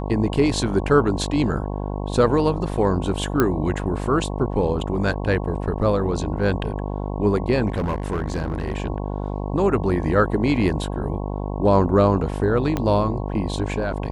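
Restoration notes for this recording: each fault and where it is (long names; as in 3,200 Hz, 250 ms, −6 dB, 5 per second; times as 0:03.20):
mains buzz 50 Hz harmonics 22 −27 dBFS
0:03.40: click −5 dBFS
0:07.72–0:08.78: clipping −19.5 dBFS
0:12.77: click −10 dBFS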